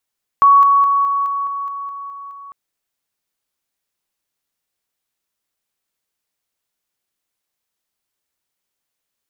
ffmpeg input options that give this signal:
-f lavfi -i "aevalsrc='pow(10,(-6-3*floor(t/0.21))/20)*sin(2*PI*1120*t)':d=2.1:s=44100"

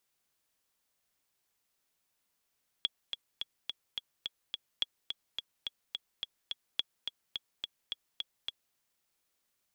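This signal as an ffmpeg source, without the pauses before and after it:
-f lavfi -i "aevalsrc='pow(10,(-16-6.5*gte(mod(t,7*60/213),60/213))/20)*sin(2*PI*3350*mod(t,60/213))*exp(-6.91*mod(t,60/213)/0.03)':d=5.91:s=44100"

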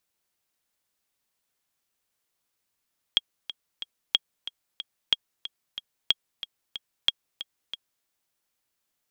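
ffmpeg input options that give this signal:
-f lavfi -i "aevalsrc='pow(10,(-6.5-14*gte(mod(t,3*60/184),60/184))/20)*sin(2*PI*3280*mod(t,60/184))*exp(-6.91*mod(t,60/184)/0.03)':d=4.89:s=44100"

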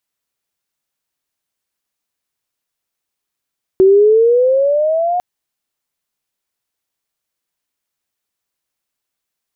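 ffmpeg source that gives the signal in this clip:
-f lavfi -i "aevalsrc='pow(10,(-4.5-9*t/1.4)/20)*sin(2*PI*374*1.4/(11.5*log(2)/12)*(exp(11.5*log(2)/12*t/1.4)-1))':d=1.4:s=44100"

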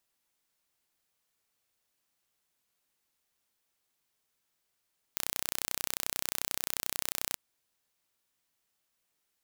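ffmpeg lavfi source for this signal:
-f lavfi -i "aevalsrc='0.596*eq(mod(n,1409),0)':d=2.18:s=44100"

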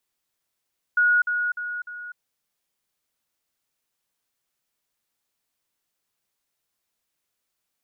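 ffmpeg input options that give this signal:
-f lavfi -i "aevalsrc='pow(10,(-15.5-6*floor(t/0.3))/20)*sin(2*PI*1450*t)*clip(min(mod(t,0.3),0.25-mod(t,0.3))/0.005,0,1)':d=1.2:s=44100"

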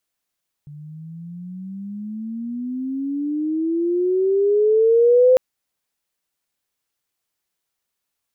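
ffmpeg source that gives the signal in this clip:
-f lavfi -i "aevalsrc='pow(10,(-9+26*(t/4.7-1))/20)*sin(2*PI*145*4.7/(22*log(2)/12)*(exp(22*log(2)/12*t/4.7)-1))':d=4.7:s=44100"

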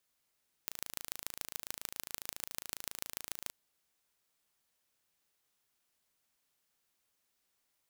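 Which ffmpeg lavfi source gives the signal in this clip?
-f lavfi -i "aevalsrc='0.355*eq(mod(n,1615),0)*(0.5+0.5*eq(mod(n,6460),0))':d=2.85:s=44100"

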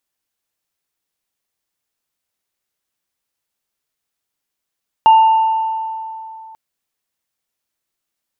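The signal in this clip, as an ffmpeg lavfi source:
-f lavfi -i "aevalsrc='0.631*pow(10,-3*t/2.86)*sin(2*PI*888*t)+0.0668*pow(10,-3*t/1.45)*sin(2*PI*2810*t)':d=1.49:s=44100"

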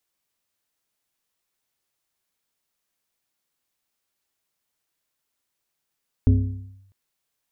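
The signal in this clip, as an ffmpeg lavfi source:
-f lavfi -i "aevalsrc='0.316*pow(10,-3*t/0.84)*sin(2*PI*97.2*t+0.9*clip(1-t/0.63,0,1)*sin(2*PI*1.65*97.2*t))':d=0.65:s=44100"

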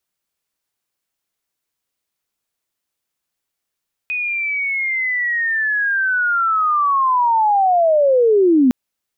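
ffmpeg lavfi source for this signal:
-f lavfi -i "aevalsrc='pow(10,(-19+10*t/4.61)/20)*sin(2*PI*(2500*t-2260*t*t/(2*4.61)))':d=4.61:s=44100"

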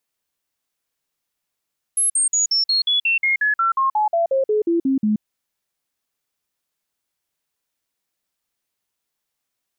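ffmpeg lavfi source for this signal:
-f lavfi -i "aevalsrc='0.178*clip(min(mod(t,0.18),0.13-mod(t,0.18))/0.005,0,1)*sin(2*PI*10800*pow(2,-floor(t/0.18)/3)*mod(t,0.18))':d=3.24:s=44100"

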